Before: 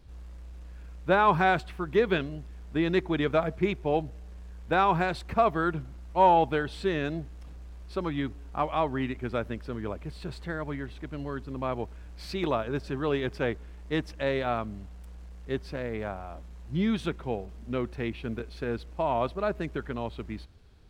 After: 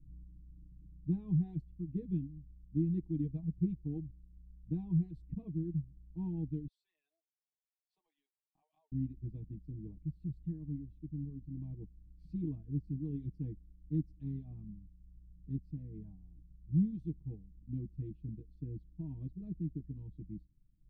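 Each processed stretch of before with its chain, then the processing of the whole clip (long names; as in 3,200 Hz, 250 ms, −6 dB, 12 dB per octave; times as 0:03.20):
0:06.67–0:08.92: Butterworth high-pass 600 Hz 48 dB per octave + downward compressor 2 to 1, threshold −39 dBFS
whole clip: reverb reduction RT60 1.5 s; inverse Chebyshev low-pass filter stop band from 520 Hz, stop band 40 dB; comb filter 6.4 ms, depth 99%; level −3.5 dB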